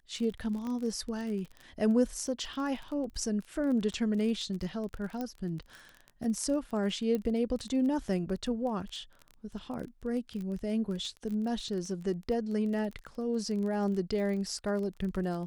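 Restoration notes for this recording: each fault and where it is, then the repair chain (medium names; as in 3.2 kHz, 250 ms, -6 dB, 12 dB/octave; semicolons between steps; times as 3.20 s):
crackle 24 per s -37 dBFS
0.67 s: pop -27 dBFS
5.21 s: pop -23 dBFS
7.15 s: pop -21 dBFS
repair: de-click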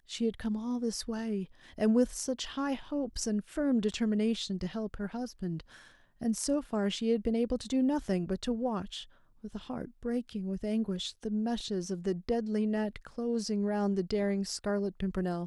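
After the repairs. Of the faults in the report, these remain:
0.67 s: pop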